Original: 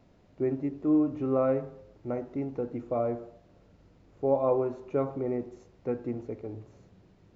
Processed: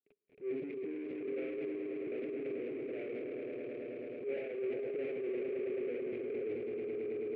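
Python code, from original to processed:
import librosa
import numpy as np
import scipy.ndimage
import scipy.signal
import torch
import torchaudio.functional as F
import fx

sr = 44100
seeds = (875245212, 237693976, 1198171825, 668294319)

y = fx.cvsd(x, sr, bps=32000)
y = fx.dispersion(y, sr, late='highs', ms=57.0, hz=1000.0)
y = fx.level_steps(y, sr, step_db=20)
y = fx.echo_swell(y, sr, ms=108, loudest=5, wet_db=-9.0)
y = fx.leveller(y, sr, passes=5)
y = fx.double_bandpass(y, sr, hz=990.0, octaves=2.5)
y = fx.air_absorb(y, sr, metres=480.0)
y = fx.transient(y, sr, attack_db=-11, sustain_db=5)
y = F.gain(torch.from_numpy(y), 2.0).numpy()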